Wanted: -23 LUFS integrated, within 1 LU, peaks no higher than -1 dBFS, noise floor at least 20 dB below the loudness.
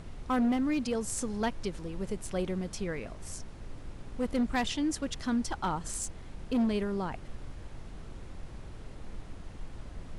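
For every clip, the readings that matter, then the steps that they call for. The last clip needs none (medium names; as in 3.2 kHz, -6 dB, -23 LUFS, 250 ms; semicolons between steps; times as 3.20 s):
clipped samples 1.5%; clipping level -23.5 dBFS; noise floor -46 dBFS; noise floor target -53 dBFS; loudness -32.5 LUFS; peak level -23.5 dBFS; loudness target -23.0 LUFS
-> clip repair -23.5 dBFS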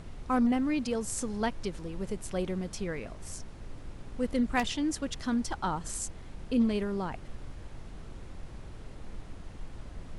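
clipped samples 0.0%; noise floor -46 dBFS; noise floor target -52 dBFS
-> noise print and reduce 6 dB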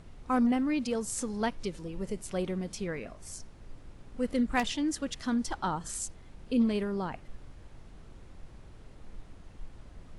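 noise floor -52 dBFS; loudness -32.0 LUFS; peak level -14.5 dBFS; loudness target -23.0 LUFS
-> trim +9 dB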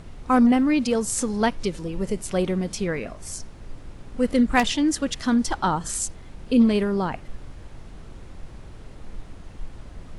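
loudness -23.0 LUFS; peak level -5.5 dBFS; noise floor -43 dBFS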